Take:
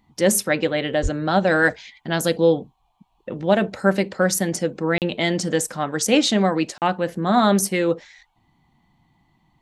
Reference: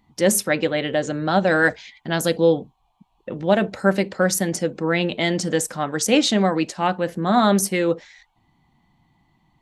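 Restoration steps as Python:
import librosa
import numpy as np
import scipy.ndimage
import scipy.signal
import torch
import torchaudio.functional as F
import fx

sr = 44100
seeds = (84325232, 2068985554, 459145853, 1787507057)

y = fx.highpass(x, sr, hz=140.0, slope=24, at=(1.02, 1.14), fade=0.02)
y = fx.fix_interpolate(y, sr, at_s=(4.98, 6.78), length_ms=38.0)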